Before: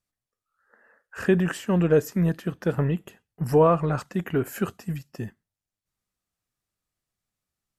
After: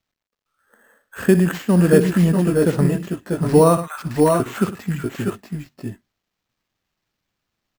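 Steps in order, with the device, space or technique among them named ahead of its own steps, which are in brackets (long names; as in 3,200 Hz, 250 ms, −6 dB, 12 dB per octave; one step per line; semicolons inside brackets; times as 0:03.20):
0:03.77–0:04.40: high-pass filter 1,100 Hz 24 dB per octave
parametric band 230 Hz +5.5 dB 1.2 octaves
multi-tap delay 62/103/641/658/661 ms −13/−16.5/−5.5/−7.5/−8 dB
early companding sampler (sample-rate reduction 9,800 Hz, jitter 0%; log-companded quantiser 8 bits)
level +3 dB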